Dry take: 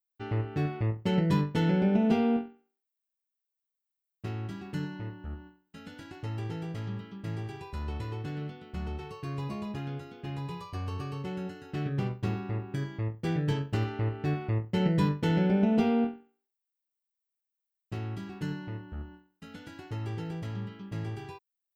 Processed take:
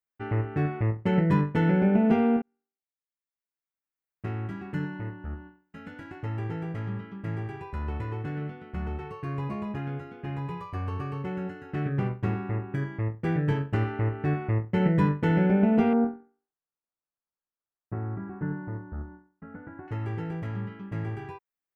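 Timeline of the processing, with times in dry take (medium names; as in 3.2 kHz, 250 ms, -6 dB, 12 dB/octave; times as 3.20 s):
2.42–4.26 s: fade in
15.93–19.88 s: low-pass 1.5 kHz 24 dB/octave
whole clip: resonant high shelf 2.8 kHz -11 dB, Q 1.5; trim +3 dB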